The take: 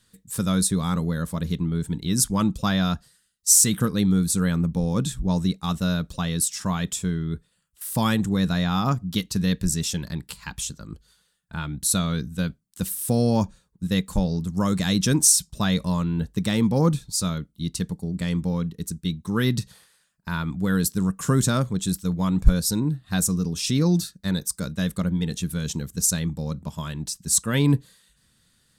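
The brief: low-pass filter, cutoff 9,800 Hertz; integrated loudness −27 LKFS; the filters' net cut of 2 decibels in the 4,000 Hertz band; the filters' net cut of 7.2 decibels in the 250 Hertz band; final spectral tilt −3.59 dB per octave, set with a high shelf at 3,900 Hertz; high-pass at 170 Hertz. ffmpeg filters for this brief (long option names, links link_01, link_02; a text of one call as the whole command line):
ffmpeg -i in.wav -af "highpass=170,lowpass=9800,equalizer=frequency=250:width_type=o:gain=-8,highshelf=frequency=3900:gain=6.5,equalizer=frequency=4000:width_type=o:gain=-7,volume=-2dB" out.wav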